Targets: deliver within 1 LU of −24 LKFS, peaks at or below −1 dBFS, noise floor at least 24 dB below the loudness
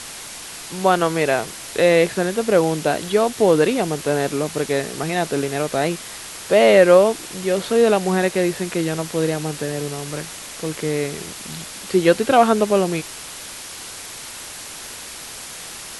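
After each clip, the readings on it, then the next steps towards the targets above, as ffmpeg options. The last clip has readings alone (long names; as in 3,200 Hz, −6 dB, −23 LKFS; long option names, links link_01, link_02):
background noise floor −35 dBFS; target noise floor −43 dBFS; integrated loudness −19.0 LKFS; sample peak −1.0 dBFS; target loudness −24.0 LKFS
→ -af "afftdn=noise_reduction=8:noise_floor=-35"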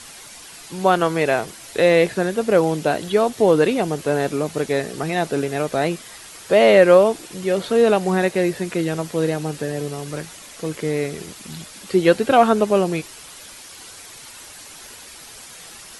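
background noise floor −41 dBFS; target noise floor −43 dBFS
→ -af "afftdn=noise_reduction=6:noise_floor=-41"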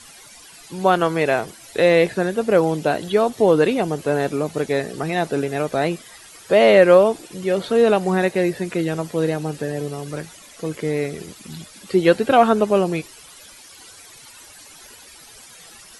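background noise floor −44 dBFS; integrated loudness −19.0 LKFS; sample peak −1.5 dBFS; target loudness −24.0 LKFS
→ -af "volume=-5dB"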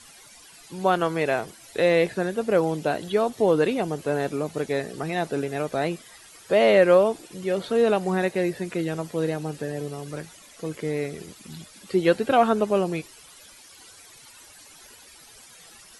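integrated loudness −24.0 LKFS; sample peak −6.5 dBFS; background noise floor −49 dBFS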